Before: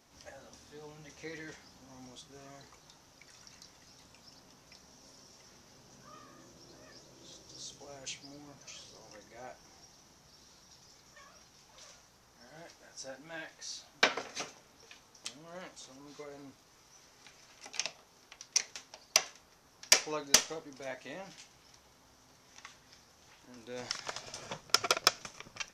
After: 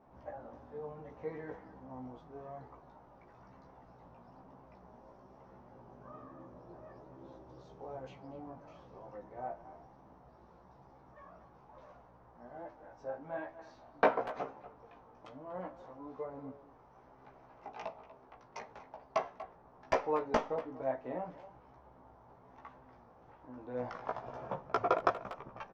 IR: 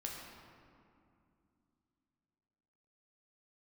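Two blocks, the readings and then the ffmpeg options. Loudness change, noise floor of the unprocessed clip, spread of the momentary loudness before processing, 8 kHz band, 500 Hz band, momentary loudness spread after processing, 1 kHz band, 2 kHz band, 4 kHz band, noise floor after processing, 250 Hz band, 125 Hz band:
−6.0 dB, −63 dBFS, 26 LU, below −30 dB, +6.5 dB, 24 LU, +5.0 dB, −7.0 dB, −22.5 dB, −61 dBFS, +4.5 dB, +4.0 dB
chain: -filter_complex "[0:a]lowpass=frequency=890:width_type=q:width=1.6,asplit=2[link_01][link_02];[link_02]adelay=240,highpass=300,lowpass=3400,asoftclip=type=hard:threshold=-23dB,volume=-14dB[link_03];[link_01][link_03]amix=inputs=2:normalize=0,flanger=delay=15:depth=2.4:speed=1.1,volume=6.5dB"

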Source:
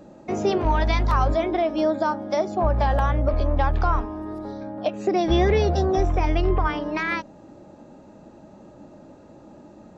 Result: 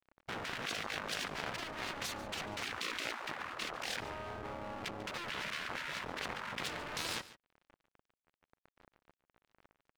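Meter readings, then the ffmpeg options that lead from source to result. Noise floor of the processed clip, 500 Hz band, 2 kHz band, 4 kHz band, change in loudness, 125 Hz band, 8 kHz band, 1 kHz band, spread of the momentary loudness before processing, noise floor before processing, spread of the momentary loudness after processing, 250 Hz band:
below −85 dBFS, −23.0 dB, −7.5 dB, −3.5 dB, −16.5 dB, −27.0 dB, can't be measured, −18.0 dB, 9 LU, −48 dBFS, 5 LU, −23.0 dB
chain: -filter_complex "[0:a]lowpass=frequency=1300:width_type=q:width=1.5,aecho=1:1:2.3:0.45,acompressor=threshold=-18dB:ratio=6,aeval=exprs='sgn(val(0))*max(abs(val(0))-0.0119,0)':channel_layout=same,aeval=exprs='0.299*(cos(1*acos(clip(val(0)/0.299,-1,1)))-cos(1*PI/2))+0.0188*(cos(4*acos(clip(val(0)/0.299,-1,1)))-cos(4*PI/2))+0.106*(cos(7*acos(clip(val(0)/0.299,-1,1)))-cos(7*PI/2))+0.0133*(cos(8*acos(clip(val(0)/0.299,-1,1)))-cos(8*PI/2))':channel_layout=same,aeval=exprs='max(val(0),0)':channel_layout=same,afftfilt=real='re*lt(hypot(re,im),0.0631)':imag='im*lt(hypot(re,im),0.0631)':win_size=1024:overlap=0.75,asplit=2[link_01][link_02];[link_02]aecho=0:1:143:0.141[link_03];[link_01][link_03]amix=inputs=2:normalize=0,volume=-2.5dB"

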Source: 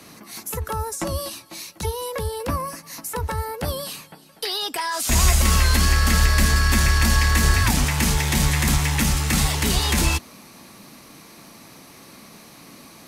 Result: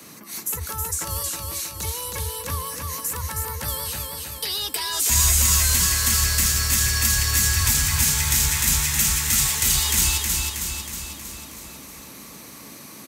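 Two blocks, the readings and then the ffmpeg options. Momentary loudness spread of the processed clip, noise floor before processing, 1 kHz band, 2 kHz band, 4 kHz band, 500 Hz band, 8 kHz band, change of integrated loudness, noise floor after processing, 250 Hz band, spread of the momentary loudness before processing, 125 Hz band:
19 LU, −47 dBFS, −6.0 dB, −3.0 dB, +1.5 dB, −8.5 dB, +6.5 dB, +1.0 dB, −42 dBFS, −9.5 dB, 13 LU, −5.5 dB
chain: -filter_complex "[0:a]highpass=73,equalizer=frequency=720:width=4.2:gain=-4.5,acrossover=split=120|1000|3100[link_01][link_02][link_03][link_04];[link_02]acompressor=threshold=-42dB:ratio=5[link_05];[link_03]asoftclip=type=tanh:threshold=-32.5dB[link_06];[link_04]aexciter=amount=1.9:drive=5.3:freq=6400[link_07];[link_01][link_05][link_06][link_07]amix=inputs=4:normalize=0,aecho=1:1:318|636|954|1272|1590|1908|2226|2544:0.668|0.388|0.225|0.13|0.0756|0.0439|0.0254|0.0148"

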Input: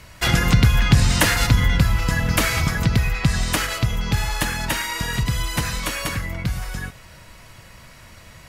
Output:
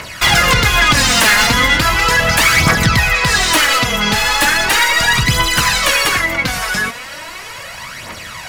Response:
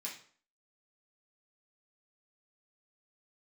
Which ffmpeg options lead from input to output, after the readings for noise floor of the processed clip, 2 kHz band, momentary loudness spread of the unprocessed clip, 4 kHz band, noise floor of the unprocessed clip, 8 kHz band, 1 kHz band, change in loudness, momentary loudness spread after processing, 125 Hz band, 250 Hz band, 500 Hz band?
−31 dBFS, +13.0 dB, 10 LU, +12.5 dB, −45 dBFS, +11.0 dB, +13.0 dB, +9.0 dB, 18 LU, −1.0 dB, +3.0 dB, +9.5 dB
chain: -filter_complex "[0:a]asplit=2[link_01][link_02];[link_02]highpass=frequency=720:poles=1,volume=26dB,asoftclip=type=tanh:threshold=-2.5dB[link_03];[link_01][link_03]amix=inputs=2:normalize=0,lowpass=frequency=6100:poles=1,volume=-6dB,aphaser=in_gain=1:out_gain=1:delay=4.9:decay=0.56:speed=0.37:type=triangular,volume=-2dB"

